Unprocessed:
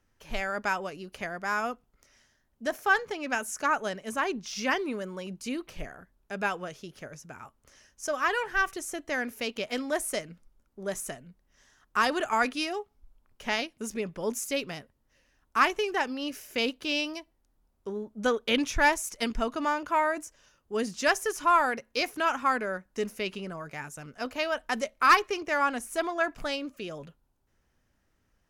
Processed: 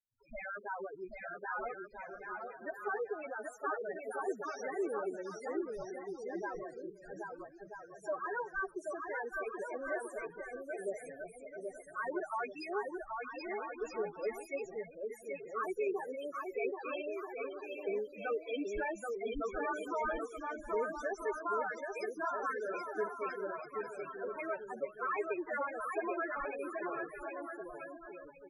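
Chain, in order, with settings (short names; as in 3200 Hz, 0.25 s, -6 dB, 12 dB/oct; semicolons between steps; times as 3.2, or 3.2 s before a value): spectral limiter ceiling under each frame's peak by 14 dB; notch 2900 Hz, Q 13; in parallel at -7 dB: soft clip -23 dBFS, distortion -10 dB; on the sum: gate with hold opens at -54 dBFS; loudest bins only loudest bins 2; resonant low shelf 310 Hz -7.5 dB, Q 3; limiter -26.5 dBFS, peak gain reduction 8 dB; on a send: bouncing-ball echo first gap 0.78 s, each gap 0.65×, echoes 5; on the sum: gain -2 dB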